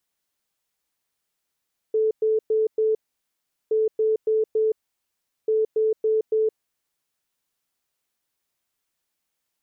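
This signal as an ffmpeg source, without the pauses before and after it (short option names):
-f lavfi -i "aevalsrc='0.133*sin(2*PI*437*t)*clip(min(mod(mod(t,1.77),0.28),0.17-mod(mod(t,1.77),0.28))/0.005,0,1)*lt(mod(t,1.77),1.12)':d=5.31:s=44100"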